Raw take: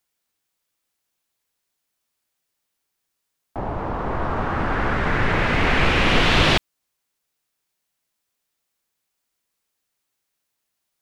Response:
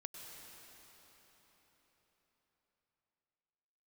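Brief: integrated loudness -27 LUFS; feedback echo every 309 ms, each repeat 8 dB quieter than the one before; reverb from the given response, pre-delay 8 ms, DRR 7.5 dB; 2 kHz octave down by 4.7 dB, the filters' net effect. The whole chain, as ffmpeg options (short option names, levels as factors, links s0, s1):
-filter_complex "[0:a]equalizer=f=2000:t=o:g=-6,aecho=1:1:309|618|927|1236|1545:0.398|0.159|0.0637|0.0255|0.0102,asplit=2[s0][s1];[1:a]atrim=start_sample=2205,adelay=8[s2];[s1][s2]afir=irnorm=-1:irlink=0,volume=0.631[s3];[s0][s3]amix=inputs=2:normalize=0,volume=0.531"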